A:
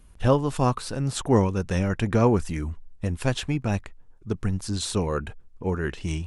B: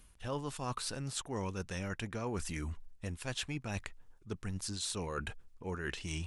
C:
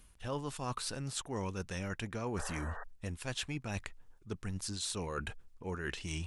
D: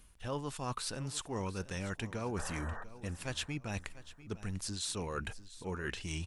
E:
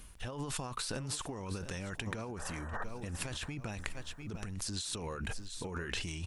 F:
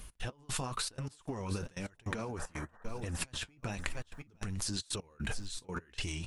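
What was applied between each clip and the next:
tilt shelf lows -5 dB, about 1.2 kHz; reverse; compression 6:1, threshold -34 dBFS, peak gain reduction 15.5 dB; reverse; trim -1.5 dB
painted sound noise, 2.37–2.84 s, 410–1900 Hz -46 dBFS
feedback delay 695 ms, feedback 34%, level -16.5 dB
compressor with a negative ratio -43 dBFS, ratio -1; trim +4 dB
trance gate "x.x..xxx" 153 bpm -24 dB; flange 1 Hz, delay 1.4 ms, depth 8.7 ms, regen -49%; trim +6.5 dB

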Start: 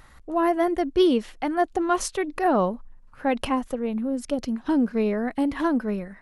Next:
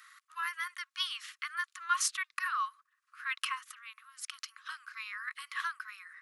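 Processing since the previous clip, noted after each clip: Chebyshev high-pass 1.1 kHz, order 8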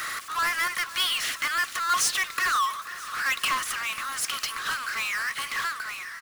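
fade out at the end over 1.94 s; power-law waveshaper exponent 0.35; feedback delay 489 ms, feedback 55%, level -17 dB

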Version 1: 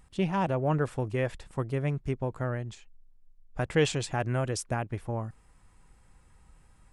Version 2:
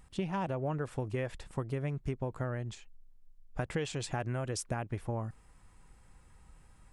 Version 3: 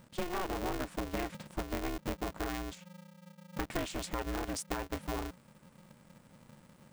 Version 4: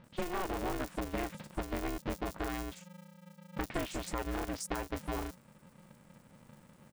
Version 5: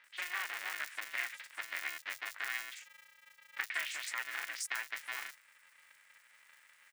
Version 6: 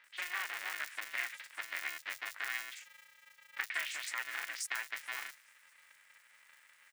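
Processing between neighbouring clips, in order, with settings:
compression 12:1, threshold -30 dBFS, peak gain reduction 12 dB
polarity switched at an audio rate 180 Hz; trim -1.5 dB
bands offset in time lows, highs 40 ms, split 4.4 kHz
resonant high-pass 1.9 kHz, resonance Q 3; trim +1 dB
feedback echo behind a high-pass 214 ms, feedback 67%, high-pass 3.5 kHz, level -23 dB

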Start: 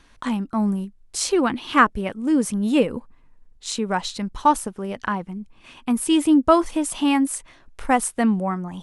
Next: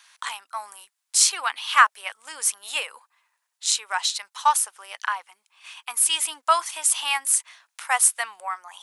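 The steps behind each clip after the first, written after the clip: high-pass 840 Hz 24 dB/octave; tilt EQ +3 dB/octave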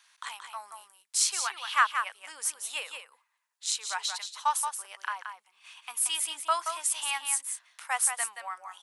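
delay 177 ms -7 dB; trim -8 dB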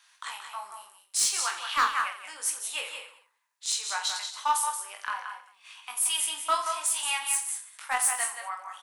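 hard clipper -20 dBFS, distortion -14 dB; reverse bouncing-ball echo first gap 20 ms, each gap 1.4×, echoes 5

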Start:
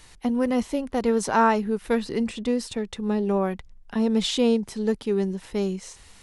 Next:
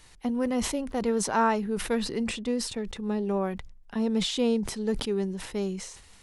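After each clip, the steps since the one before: decay stretcher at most 69 dB/s; trim -4.5 dB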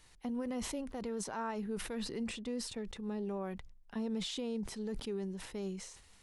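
peak limiter -22.5 dBFS, peak gain reduction 8.5 dB; trim -8 dB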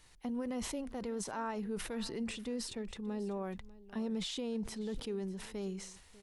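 delay 596 ms -19.5 dB

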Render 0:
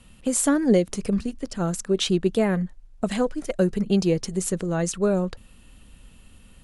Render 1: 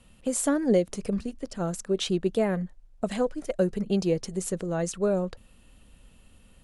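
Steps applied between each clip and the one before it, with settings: peaking EQ 580 Hz +4.5 dB 1 oct; trim -5.5 dB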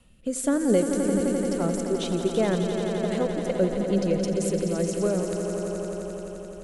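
rotary cabinet horn 1.1 Hz; echo with a slow build-up 86 ms, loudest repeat 5, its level -9.5 dB; trim +1.5 dB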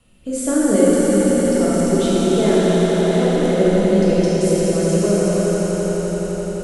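plate-style reverb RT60 4.7 s, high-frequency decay 0.95×, DRR -8.5 dB

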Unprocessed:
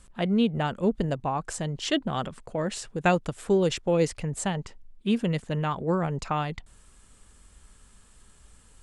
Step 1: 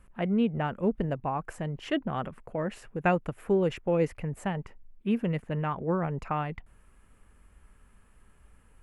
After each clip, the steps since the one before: high-order bell 5.5 kHz -15.5 dB; trim -2.5 dB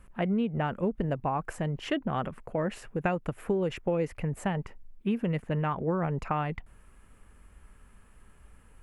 compression 10:1, threshold -27 dBFS, peak gain reduction 8.5 dB; trim +3 dB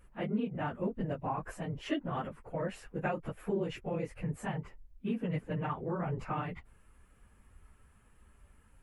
phase randomisation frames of 50 ms; trim -5.5 dB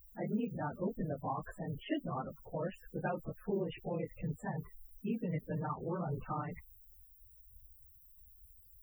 added noise blue -49 dBFS; loudest bins only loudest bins 32; trim -2.5 dB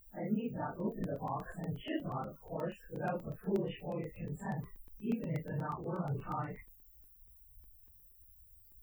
phase randomisation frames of 100 ms; crackling interface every 0.12 s, samples 64, zero, from 0.80 s

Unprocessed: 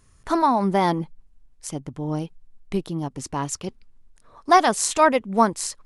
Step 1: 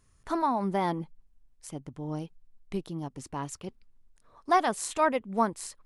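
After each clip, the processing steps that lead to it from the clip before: dynamic bell 5.8 kHz, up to -6 dB, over -43 dBFS, Q 1.2; trim -8 dB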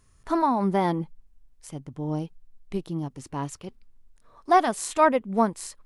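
harmonic-percussive split harmonic +6 dB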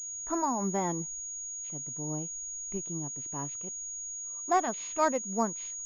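class-D stage that switches slowly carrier 6.7 kHz; trim -7.5 dB

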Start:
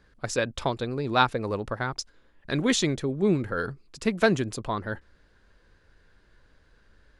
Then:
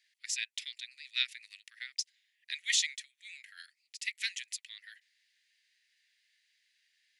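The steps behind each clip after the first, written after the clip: Chebyshev high-pass 1.9 kHz, order 6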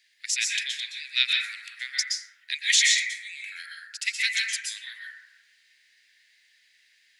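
plate-style reverb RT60 1.2 s, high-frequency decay 0.25×, pre-delay 110 ms, DRR -4 dB; trim +8 dB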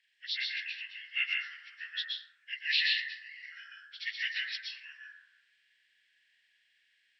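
knee-point frequency compression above 1.5 kHz 1.5:1; trim -7 dB

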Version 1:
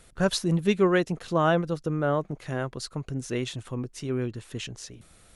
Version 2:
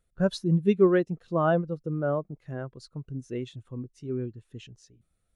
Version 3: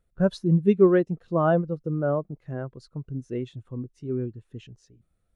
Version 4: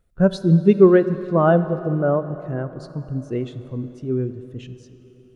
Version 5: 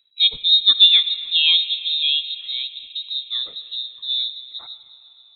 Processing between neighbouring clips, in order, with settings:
spectral contrast expander 1.5:1
treble shelf 2.2 kHz -9 dB; trim +3 dB
plate-style reverb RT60 4 s, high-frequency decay 0.75×, DRR 12 dB; trim +5.5 dB
frequency inversion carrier 3.9 kHz; trim -1 dB

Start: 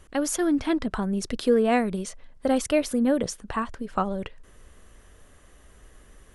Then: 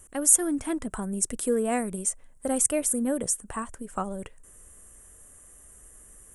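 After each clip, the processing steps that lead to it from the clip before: resonant high shelf 6.1 kHz +13 dB, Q 3; trim -5 dB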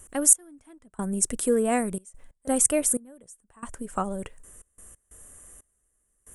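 trance gate "xx....xxxxxx.x.x" 91 bpm -24 dB; trim +2.5 dB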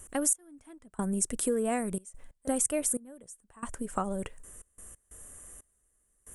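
compression 3:1, threshold -27 dBFS, peak gain reduction 11.5 dB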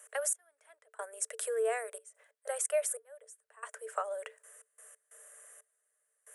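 rippled Chebyshev high-pass 430 Hz, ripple 9 dB; trim +3 dB

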